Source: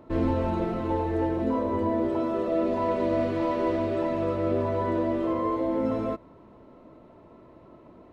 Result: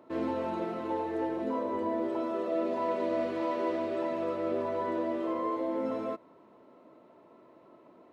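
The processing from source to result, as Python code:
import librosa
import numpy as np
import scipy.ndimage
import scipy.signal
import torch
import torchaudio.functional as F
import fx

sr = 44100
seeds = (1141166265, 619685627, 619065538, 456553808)

y = scipy.signal.sosfilt(scipy.signal.bessel(2, 300.0, 'highpass', norm='mag', fs=sr, output='sos'), x)
y = y * librosa.db_to_amplitude(-3.5)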